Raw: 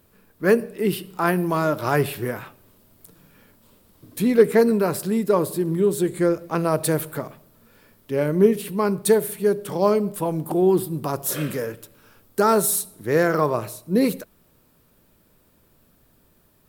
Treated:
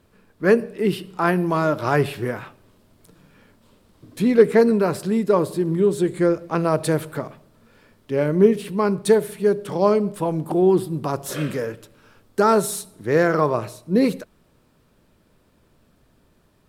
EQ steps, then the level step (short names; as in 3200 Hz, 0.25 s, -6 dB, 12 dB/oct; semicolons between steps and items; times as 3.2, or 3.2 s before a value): air absorption 52 m; +1.5 dB